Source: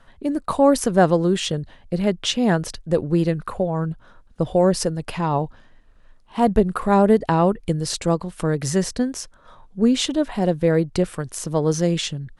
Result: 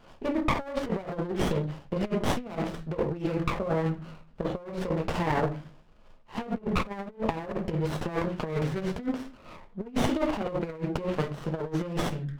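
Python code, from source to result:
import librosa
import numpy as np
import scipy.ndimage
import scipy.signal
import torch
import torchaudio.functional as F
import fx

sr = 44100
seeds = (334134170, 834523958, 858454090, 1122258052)

y = scipy.signal.sosfilt(scipy.signal.butter(4, 2800.0, 'lowpass', fs=sr, output='sos'), x)
y = fx.room_shoebox(y, sr, seeds[0], volume_m3=130.0, walls='furnished', distance_m=1.4)
y = fx.over_compress(y, sr, threshold_db=-20.0, ratio=-0.5)
y = fx.tilt_eq(y, sr, slope=3.0)
y = fx.running_max(y, sr, window=17)
y = y * librosa.db_to_amplitude(-3.0)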